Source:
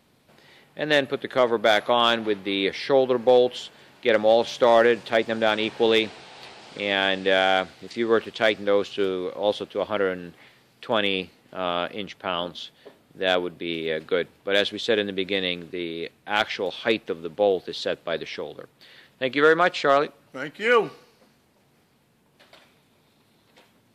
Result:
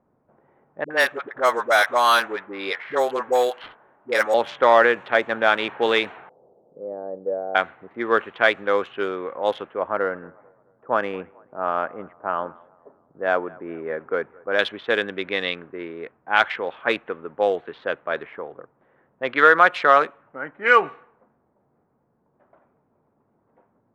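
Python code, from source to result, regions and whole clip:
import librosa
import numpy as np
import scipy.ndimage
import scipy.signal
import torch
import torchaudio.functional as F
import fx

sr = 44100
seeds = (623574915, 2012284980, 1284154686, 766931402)

y = fx.chain(x, sr, fx.low_shelf(hz=290.0, db=-10.5),
    fx.dispersion(late='highs', ms=68.0, hz=420.0),
    fx.resample_bad(factor=6, down='none', up='hold'), at=(0.84, 4.34))
y = fx.chain(y, sr, fx.ladder_lowpass(hz=590.0, resonance_pct=55),
    fx.peak_eq(hz=170.0, db=8.0, octaves=0.22), at=(6.29, 7.55))
y = fx.chain(y, sr, fx.lowpass(hz=1400.0, slope=12),
    fx.echo_thinned(ms=219, feedback_pct=63, hz=440.0, wet_db=-22), at=(9.79, 14.59))
y = fx.wiener(y, sr, points=9)
y = fx.env_lowpass(y, sr, base_hz=580.0, full_db=-17.5)
y = fx.peak_eq(y, sr, hz=1300.0, db=15.0, octaves=2.3)
y = F.gain(torch.from_numpy(y), -6.5).numpy()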